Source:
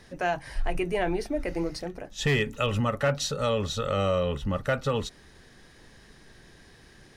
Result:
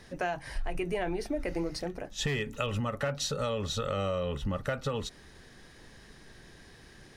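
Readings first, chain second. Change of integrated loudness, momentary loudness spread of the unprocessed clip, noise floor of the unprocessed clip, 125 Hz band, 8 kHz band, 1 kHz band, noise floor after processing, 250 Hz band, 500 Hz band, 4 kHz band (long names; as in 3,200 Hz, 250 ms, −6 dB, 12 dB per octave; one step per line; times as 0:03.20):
−5.0 dB, 7 LU, −54 dBFS, −5.0 dB, −2.0 dB, −5.5 dB, −54 dBFS, −4.5 dB, −5.5 dB, −3.5 dB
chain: downward compressor, threshold −28 dBFS, peak gain reduction 8 dB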